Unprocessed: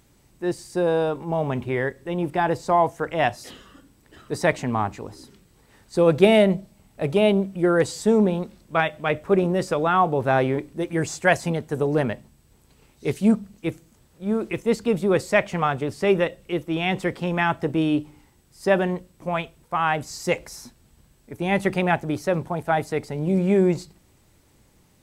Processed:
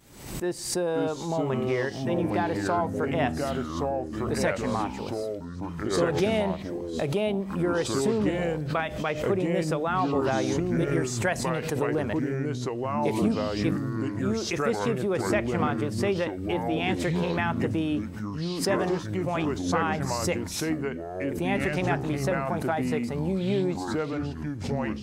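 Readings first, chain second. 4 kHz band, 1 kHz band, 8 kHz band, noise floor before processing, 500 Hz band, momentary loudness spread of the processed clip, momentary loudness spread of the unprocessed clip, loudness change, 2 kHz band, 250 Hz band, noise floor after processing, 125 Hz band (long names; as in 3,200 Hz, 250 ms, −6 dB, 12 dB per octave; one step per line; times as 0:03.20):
−1.5 dB, −5.0 dB, +2.5 dB, −59 dBFS, −4.5 dB, 5 LU, 10 LU, −4.5 dB, −5.0 dB, −2.5 dB, −36 dBFS, −1.5 dB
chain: low-shelf EQ 110 Hz −6.5 dB
downward compressor 2.5 to 1, threshold −27 dBFS, peak gain reduction 11.5 dB
downward expander −49 dBFS
delay with pitch and tempo change per echo 423 ms, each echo −4 semitones, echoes 3
background raised ahead of every attack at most 74 dB per second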